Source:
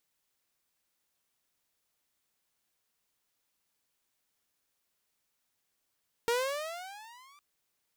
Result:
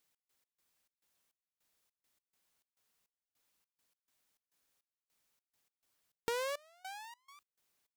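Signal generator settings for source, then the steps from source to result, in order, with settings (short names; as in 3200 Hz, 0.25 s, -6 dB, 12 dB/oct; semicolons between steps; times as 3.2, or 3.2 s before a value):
gliding synth tone saw, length 1.11 s, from 460 Hz, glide +16.5 st, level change -32 dB, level -22.5 dB
notches 60/120 Hz; compressor 3:1, threshold -35 dBFS; step gate "x.x.xx.xx..x" 103 bpm -24 dB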